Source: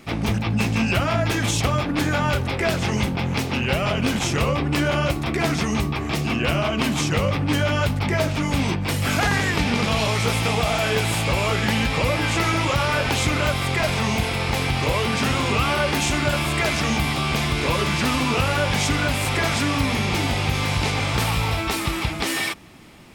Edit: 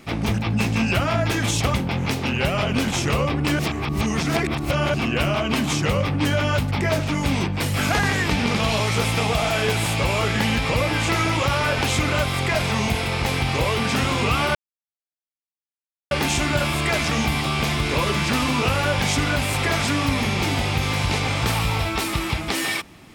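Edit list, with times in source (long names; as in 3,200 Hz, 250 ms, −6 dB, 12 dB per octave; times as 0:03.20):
0:01.74–0:03.02: remove
0:04.87–0:06.22: reverse
0:15.83: splice in silence 1.56 s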